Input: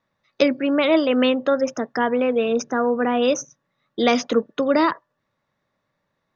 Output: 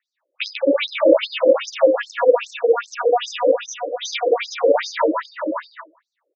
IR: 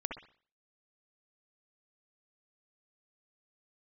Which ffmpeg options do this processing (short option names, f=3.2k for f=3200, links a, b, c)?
-filter_complex "[0:a]aecho=1:1:55|74|327|669|695:0.596|0.355|0.531|0.335|0.316,asplit=2[a][b];[1:a]atrim=start_sample=2205,lowshelf=f=300:g=8.5,adelay=148[c];[b][c]afir=irnorm=-1:irlink=0,volume=-5dB[d];[a][d]amix=inputs=2:normalize=0,asettb=1/sr,asplit=3[e][f][g];[e]atrim=end=1.724[h];[f]atrim=start=1.72:end=3.32,asetpts=PTS-STARTPTS,afade=t=in:d=0.004:c=qsin,afade=t=out:st=1.596:d=0.004:c=qsin,acrusher=bits=8:mode=log:mix=0:aa=0.000001[i];[g]atrim=start=3.316[j];[h][i]acrossfade=d=0.004:c1=hsin:c2=qsin[k];[k][j]acrossfade=d=0.004:c1=qsin:c2=hsin,afftfilt=real='re*between(b*sr/1024,400*pow(5900/400,0.5+0.5*sin(2*PI*2.5*pts/sr))/1.41,400*pow(5900/400,0.5+0.5*sin(2*PI*2.5*pts/sr))*1.41)':imag='im*between(b*sr/1024,400*pow(5900/400,0.5+0.5*sin(2*PI*2.5*pts/sr))/1.41,400*pow(5900/400,0.5+0.5*sin(2*PI*2.5*pts/sr))*1.41)':win_size=1024:overlap=0.75,volume=4dB"